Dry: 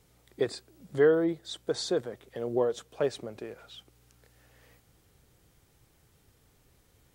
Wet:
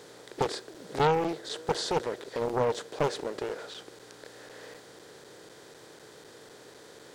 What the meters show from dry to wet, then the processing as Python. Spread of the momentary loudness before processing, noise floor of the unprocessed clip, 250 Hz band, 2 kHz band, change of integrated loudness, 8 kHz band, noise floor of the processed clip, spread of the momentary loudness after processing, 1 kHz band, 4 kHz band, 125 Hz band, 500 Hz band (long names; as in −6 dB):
20 LU, −66 dBFS, −3.0 dB, +1.5 dB, −1.0 dB, +3.0 dB, −52 dBFS, 22 LU, +12.0 dB, +3.0 dB, +4.5 dB, −2.0 dB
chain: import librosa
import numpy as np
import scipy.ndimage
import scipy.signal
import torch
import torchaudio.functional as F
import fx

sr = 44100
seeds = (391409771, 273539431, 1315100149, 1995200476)

p1 = fx.bin_compress(x, sr, power=0.6)
p2 = fx.highpass(p1, sr, hz=360.0, slope=6)
p3 = p2 + fx.echo_single(p2, sr, ms=495, db=-23.5, dry=0)
p4 = fx.buffer_crackle(p3, sr, first_s=0.74, period_s=0.25, block=256, kind='zero')
y = fx.doppler_dist(p4, sr, depth_ms=0.67)